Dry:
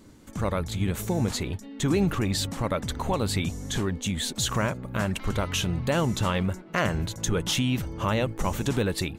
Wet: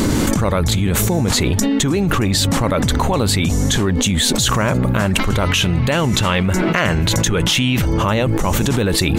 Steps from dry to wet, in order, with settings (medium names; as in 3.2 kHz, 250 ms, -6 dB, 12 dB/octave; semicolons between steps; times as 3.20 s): 5.49–7.84 s: peaking EQ 2.4 kHz +5.5 dB 1.3 oct; level flattener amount 100%; trim +4.5 dB